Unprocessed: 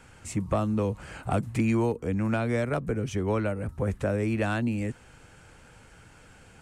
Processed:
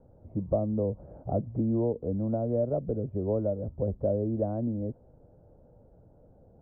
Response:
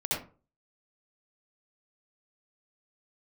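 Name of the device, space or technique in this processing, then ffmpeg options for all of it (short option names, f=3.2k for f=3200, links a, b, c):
under water: -af "lowpass=f=650:w=0.5412,lowpass=f=650:w=1.3066,equalizer=f=600:t=o:w=0.52:g=8,volume=-3dB"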